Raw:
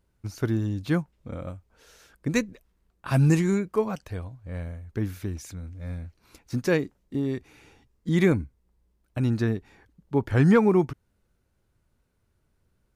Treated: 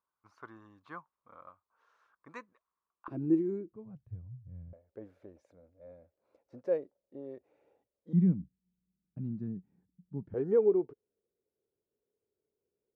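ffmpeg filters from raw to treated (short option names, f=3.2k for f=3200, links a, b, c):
-af "asetnsamples=n=441:p=0,asendcmd='3.08 bandpass f 330;3.73 bandpass f 120;4.73 bandpass f 560;8.13 bandpass f 180;10.34 bandpass f 430',bandpass=f=1.1k:t=q:w=6.4:csg=0"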